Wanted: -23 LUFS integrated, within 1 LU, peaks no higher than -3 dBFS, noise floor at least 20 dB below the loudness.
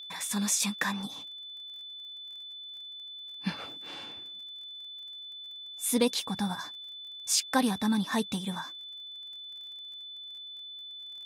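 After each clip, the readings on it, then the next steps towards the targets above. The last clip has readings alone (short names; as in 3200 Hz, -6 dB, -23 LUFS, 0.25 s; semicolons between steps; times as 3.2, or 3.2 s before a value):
ticks 33/s; steady tone 3500 Hz; tone level -41 dBFS; loudness -33.5 LUFS; peak -13.5 dBFS; loudness target -23.0 LUFS
-> de-click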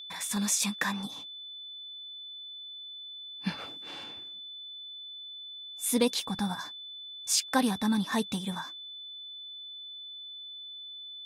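ticks 0/s; steady tone 3500 Hz; tone level -41 dBFS
-> notch 3500 Hz, Q 30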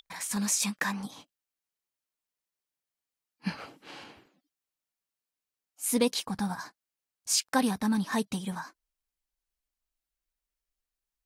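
steady tone none; loudness -30.0 LUFS; peak -13.5 dBFS; loudness target -23.0 LUFS
-> gain +7 dB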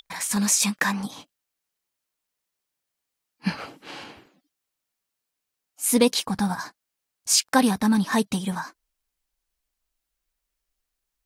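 loudness -23.0 LUFS; peak -6.5 dBFS; noise floor -83 dBFS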